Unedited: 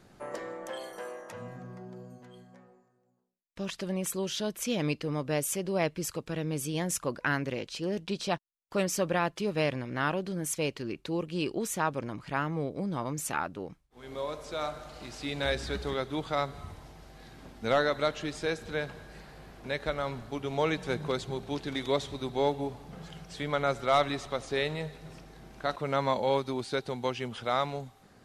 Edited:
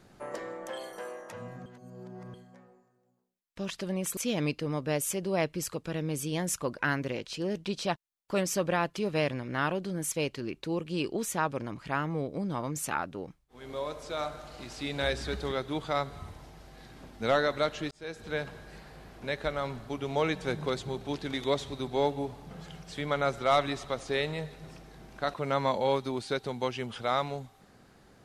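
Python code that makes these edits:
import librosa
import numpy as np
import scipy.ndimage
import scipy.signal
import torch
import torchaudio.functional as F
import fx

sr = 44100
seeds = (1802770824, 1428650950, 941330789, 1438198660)

y = fx.edit(x, sr, fx.reverse_span(start_s=1.66, length_s=0.68),
    fx.cut(start_s=4.17, length_s=0.42),
    fx.fade_in_span(start_s=18.33, length_s=0.45), tone=tone)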